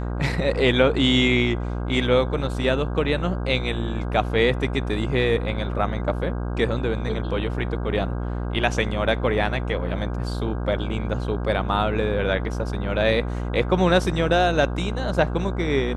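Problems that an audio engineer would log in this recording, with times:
buzz 60 Hz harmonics 27 -27 dBFS

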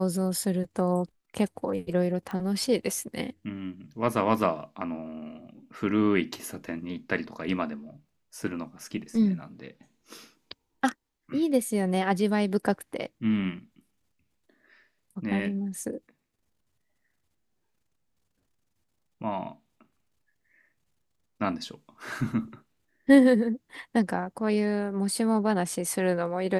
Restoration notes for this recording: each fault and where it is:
2.31 pop -24 dBFS

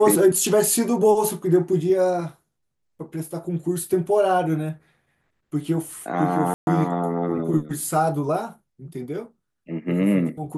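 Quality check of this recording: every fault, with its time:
6.54–6.67 gap 0.131 s

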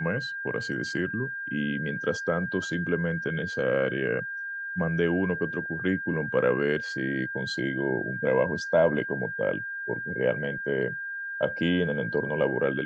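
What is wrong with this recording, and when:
tone 1600 Hz -32 dBFS

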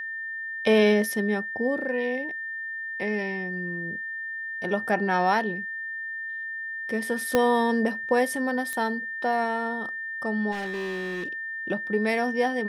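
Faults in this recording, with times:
tone 1800 Hz -31 dBFS
7.35 pop -8 dBFS
8.73 pop -17 dBFS
10.51–11.28 clipped -28 dBFS

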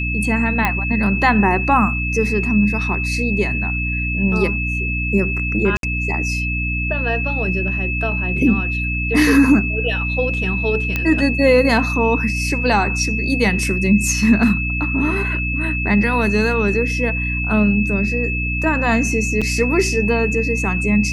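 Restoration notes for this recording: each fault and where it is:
hum 60 Hz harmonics 5 -23 dBFS
tone 2600 Hz -22 dBFS
0.65 pop -4 dBFS
5.77–5.83 gap 62 ms
10.96 pop -6 dBFS
19.41–19.42 gap 6.1 ms

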